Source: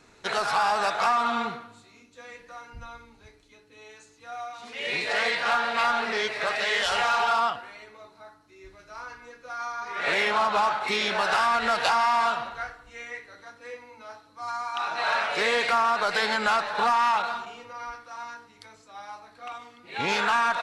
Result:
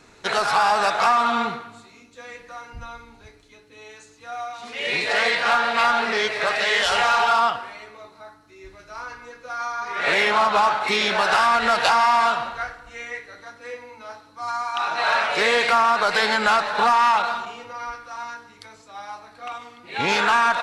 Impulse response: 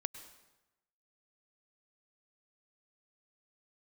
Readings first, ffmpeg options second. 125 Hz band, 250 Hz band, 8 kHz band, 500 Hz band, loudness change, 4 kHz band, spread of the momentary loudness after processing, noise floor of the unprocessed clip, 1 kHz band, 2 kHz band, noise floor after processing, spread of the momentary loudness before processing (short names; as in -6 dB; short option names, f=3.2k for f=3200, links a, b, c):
n/a, +5.0 dB, +5.0 dB, +5.0 dB, +5.0 dB, +5.0 dB, 20 LU, -57 dBFS, +5.0 dB, +5.0 dB, -51 dBFS, 20 LU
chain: -filter_complex "[0:a]asplit=2[a][b];[1:a]atrim=start_sample=2205[c];[b][c]afir=irnorm=-1:irlink=0,volume=-1dB[d];[a][d]amix=inputs=2:normalize=0"